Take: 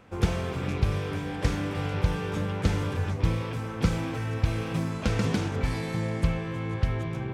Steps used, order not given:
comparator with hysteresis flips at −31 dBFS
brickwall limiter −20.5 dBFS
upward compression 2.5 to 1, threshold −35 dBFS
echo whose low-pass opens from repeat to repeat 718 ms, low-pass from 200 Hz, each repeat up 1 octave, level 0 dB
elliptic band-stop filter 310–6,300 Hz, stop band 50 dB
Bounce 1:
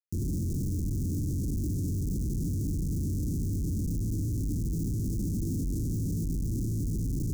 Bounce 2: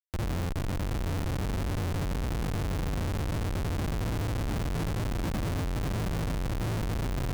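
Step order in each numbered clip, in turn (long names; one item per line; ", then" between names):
echo whose low-pass opens from repeat to repeat, then brickwall limiter, then comparator with hysteresis, then upward compression, then elliptic band-stop filter
echo whose low-pass opens from repeat to repeat, then brickwall limiter, then elliptic band-stop filter, then comparator with hysteresis, then upward compression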